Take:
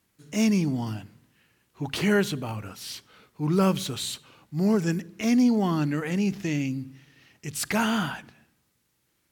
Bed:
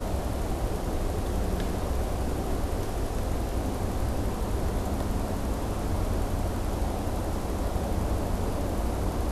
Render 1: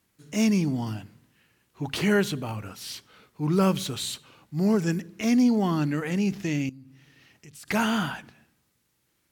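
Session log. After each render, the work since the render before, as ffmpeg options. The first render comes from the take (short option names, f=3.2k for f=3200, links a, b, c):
-filter_complex "[0:a]asettb=1/sr,asplit=3[a][b][c];[a]atrim=end=6.694[d];[b]atrim=start=6.69:end=7.68,asetpts=PTS-STARTPTS,afade=t=in:d=0.004:c=qsin,afade=t=out:st=0.986:d=0.004:c=qsin,acompressor=threshold=-51dB:ratio=2.5:attack=3.2:release=140:knee=1:detection=peak[e];[c]atrim=start=7.676[f];[d][e]acrossfade=d=0.004:c1=hsin:c2=qsin[g];[g][f]acrossfade=d=0.004:c1=qsin:c2=hsin"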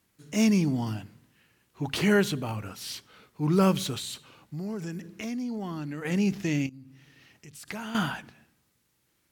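-filter_complex "[0:a]asettb=1/sr,asplit=3[a][b][c];[a]atrim=end=3.984[d];[b]atrim=start=3.98:end=6.05,asetpts=PTS-STARTPTS,afade=t=in:d=0.004:c=qsin,afade=t=out:st=2.066:d=0.004:c=qsin,acompressor=threshold=-33dB:ratio=4:attack=3.2:release=140:knee=1:detection=peak[e];[c]atrim=start=6.046[f];[d][e]acrossfade=d=0.004:c1=hsin:c2=qsin[g];[g][f]acrossfade=d=0.004:c1=qsin:c2=hsin,asettb=1/sr,asplit=3[h][i][j];[h]atrim=end=6.664[k];[i]atrim=start=6.66:end=7.95,asetpts=PTS-STARTPTS,afade=t=in:d=0.004:c=qsin,afade=t=out:st=1.286:d=0.004:c=qsin,acompressor=threshold=-34dB:ratio=6:attack=3.2:release=140:knee=1:detection=peak[l];[j]atrim=start=7.946[m];[k][l]acrossfade=d=0.004:c1=hsin:c2=qsin[n];[n][m]acrossfade=d=0.004:c1=qsin:c2=hsin"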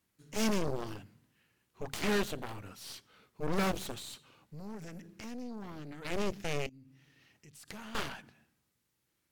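-af "aeval=exprs='0.316*(cos(1*acos(clip(val(0)/0.316,-1,1)))-cos(1*PI/2))+0.0447*(cos(4*acos(clip(val(0)/0.316,-1,1)))-cos(4*PI/2))+0.0631*(cos(7*acos(clip(val(0)/0.316,-1,1)))-cos(7*PI/2))+0.00891*(cos(8*acos(clip(val(0)/0.316,-1,1)))-cos(8*PI/2))':c=same,asoftclip=type=tanh:threshold=-23dB"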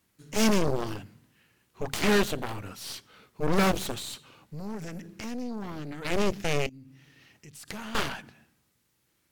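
-af "volume=7.5dB"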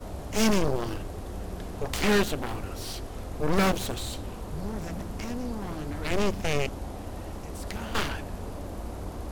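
-filter_complex "[1:a]volume=-8dB[a];[0:a][a]amix=inputs=2:normalize=0"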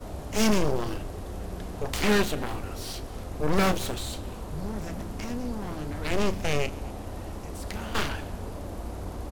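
-filter_complex "[0:a]asplit=2[a][b];[b]adelay=33,volume=-13dB[c];[a][c]amix=inputs=2:normalize=0,aecho=1:1:240:0.075"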